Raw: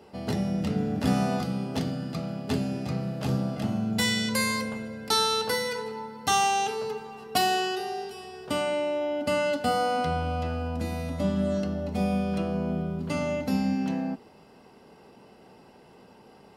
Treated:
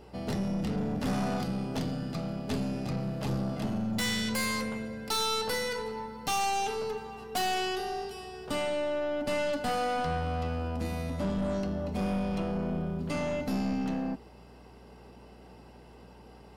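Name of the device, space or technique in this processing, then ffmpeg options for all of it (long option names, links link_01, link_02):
valve amplifier with mains hum: -af "aeval=exprs='(tanh(20*val(0)+0.3)-tanh(0.3))/20':channel_layout=same,aeval=exprs='val(0)+0.002*(sin(2*PI*60*n/s)+sin(2*PI*2*60*n/s)/2+sin(2*PI*3*60*n/s)/3+sin(2*PI*4*60*n/s)/4+sin(2*PI*5*60*n/s)/5)':channel_layout=same"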